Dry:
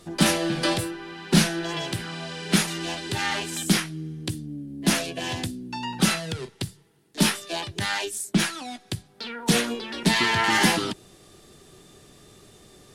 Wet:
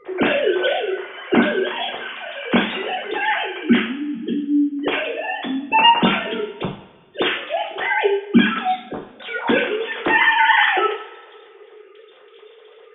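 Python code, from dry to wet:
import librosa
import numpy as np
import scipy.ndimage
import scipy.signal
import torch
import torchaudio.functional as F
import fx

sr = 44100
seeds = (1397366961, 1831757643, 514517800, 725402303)

y = fx.sine_speech(x, sr)
y = fx.rev_double_slope(y, sr, seeds[0], early_s=0.53, late_s=1.9, knee_db=-19, drr_db=-2.0)
y = F.gain(torch.from_numpy(y), 2.5).numpy()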